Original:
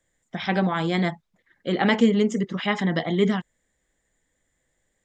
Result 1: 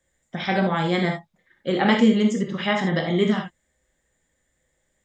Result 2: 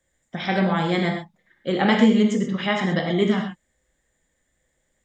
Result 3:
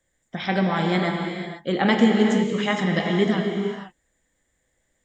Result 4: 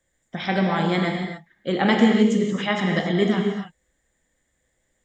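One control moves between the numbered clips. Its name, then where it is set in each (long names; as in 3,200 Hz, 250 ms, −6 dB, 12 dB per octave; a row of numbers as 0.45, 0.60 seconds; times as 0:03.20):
reverb whose tail is shaped and stops, gate: 100, 150, 520, 310 milliseconds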